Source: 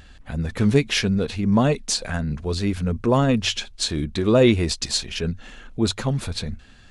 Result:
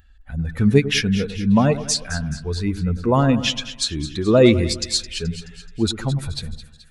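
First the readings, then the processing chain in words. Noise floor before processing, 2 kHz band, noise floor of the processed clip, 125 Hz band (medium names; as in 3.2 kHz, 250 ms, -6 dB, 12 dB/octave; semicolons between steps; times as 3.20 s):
-47 dBFS, +1.5 dB, -48 dBFS, +2.0 dB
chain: expander on every frequency bin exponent 1.5; two-band feedback delay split 1.4 kHz, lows 101 ms, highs 214 ms, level -13 dB; trim +4 dB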